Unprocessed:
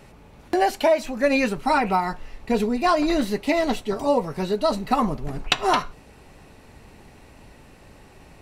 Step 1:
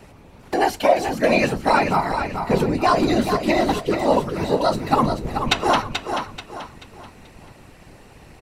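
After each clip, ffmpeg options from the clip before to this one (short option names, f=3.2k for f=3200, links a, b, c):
-filter_complex "[0:a]afftfilt=real='hypot(re,im)*cos(2*PI*random(0))':imag='hypot(re,im)*sin(2*PI*random(1))':win_size=512:overlap=0.75,asplit=2[a][b];[b]aecho=0:1:434|868|1302|1736:0.447|0.156|0.0547|0.0192[c];[a][c]amix=inputs=2:normalize=0,volume=8dB"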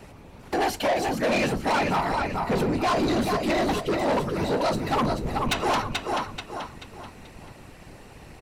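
-af "asoftclip=type=tanh:threshold=-19.5dB"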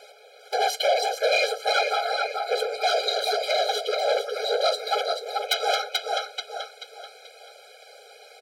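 -af "equalizer=f=4k:w=1.6:g=9.5,asoftclip=type=hard:threshold=-15dB,afftfilt=real='re*eq(mod(floor(b*sr/1024/420),2),1)':imag='im*eq(mod(floor(b*sr/1024/420),2),1)':win_size=1024:overlap=0.75,volume=2.5dB"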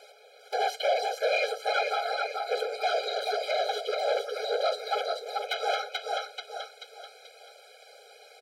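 -filter_complex "[0:a]acrossover=split=3300[a][b];[b]acompressor=threshold=-37dB:ratio=4:attack=1:release=60[c];[a][c]amix=inputs=2:normalize=0,volume=-4dB"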